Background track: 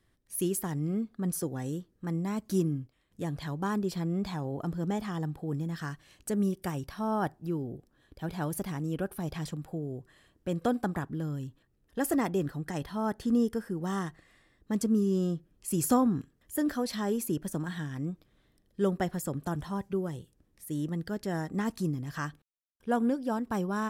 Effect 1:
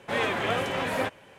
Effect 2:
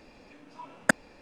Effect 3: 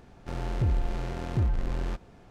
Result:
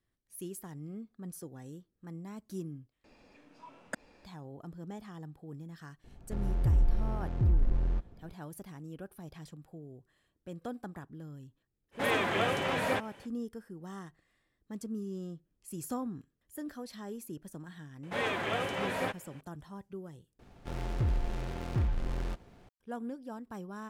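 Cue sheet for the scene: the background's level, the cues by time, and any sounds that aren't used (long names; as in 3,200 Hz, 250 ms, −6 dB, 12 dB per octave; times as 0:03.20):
background track −12 dB
0:03.04: overwrite with 2 −7 dB + brickwall limiter −16 dBFS
0:06.04: mix in 3 −9.5 dB + spectral tilt −2.5 dB per octave
0:11.91: mix in 1 −2.5 dB, fades 0.05 s
0:18.03: mix in 1 −5.5 dB
0:20.39: overwrite with 3 −4 dB + short delay modulated by noise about 1,300 Hz, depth 0.072 ms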